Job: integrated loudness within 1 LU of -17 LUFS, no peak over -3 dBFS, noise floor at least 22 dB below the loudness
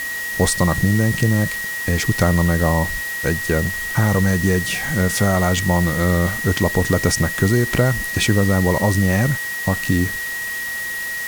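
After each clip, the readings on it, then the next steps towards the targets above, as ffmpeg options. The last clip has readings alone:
steady tone 1900 Hz; tone level -24 dBFS; noise floor -26 dBFS; noise floor target -41 dBFS; loudness -18.5 LUFS; peak -3.0 dBFS; loudness target -17.0 LUFS
-> -af "bandreject=f=1.9k:w=30"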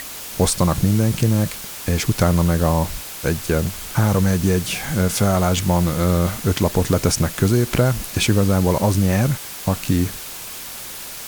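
steady tone none; noise floor -33 dBFS; noise floor target -42 dBFS
-> -af "afftdn=nr=9:nf=-33"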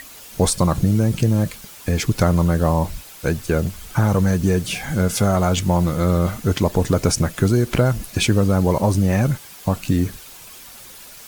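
noise floor -41 dBFS; noise floor target -42 dBFS
-> -af "afftdn=nr=6:nf=-41"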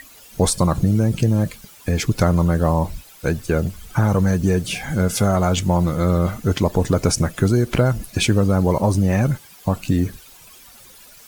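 noise floor -46 dBFS; loudness -19.5 LUFS; peak -4.5 dBFS; loudness target -17.0 LUFS
-> -af "volume=2.5dB,alimiter=limit=-3dB:level=0:latency=1"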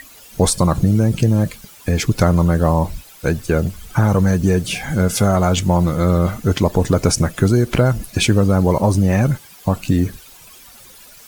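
loudness -17.0 LUFS; peak -3.0 dBFS; noise floor -43 dBFS

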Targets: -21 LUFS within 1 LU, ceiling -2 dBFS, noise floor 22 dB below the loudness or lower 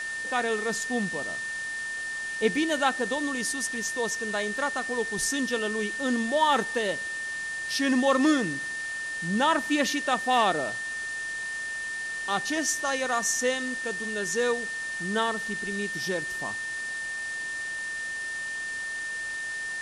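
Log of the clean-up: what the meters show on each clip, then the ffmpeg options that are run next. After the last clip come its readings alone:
steady tone 1800 Hz; tone level -31 dBFS; noise floor -34 dBFS; noise floor target -50 dBFS; loudness -28.0 LUFS; peak -11.5 dBFS; loudness target -21.0 LUFS
-> -af "bandreject=f=1.8k:w=30"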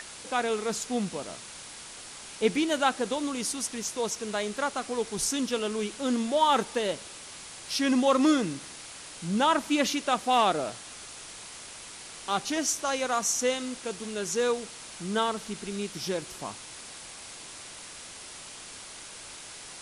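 steady tone none; noise floor -44 dBFS; noise floor target -51 dBFS
-> -af "afftdn=nr=7:nf=-44"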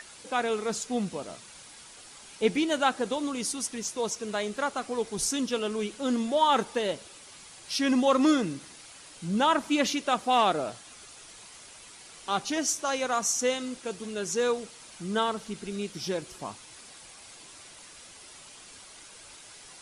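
noise floor -50 dBFS; noise floor target -51 dBFS
-> -af "afftdn=nr=6:nf=-50"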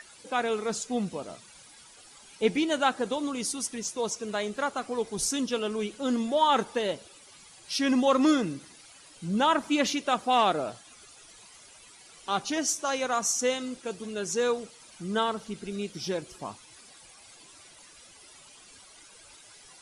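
noise floor -53 dBFS; loudness -28.5 LUFS; peak -12.0 dBFS; loudness target -21.0 LUFS
-> -af "volume=7.5dB"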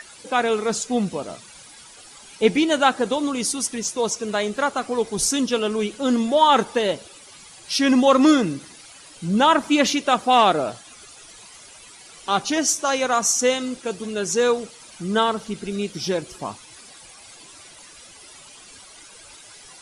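loudness -21.0 LUFS; peak -4.5 dBFS; noise floor -46 dBFS

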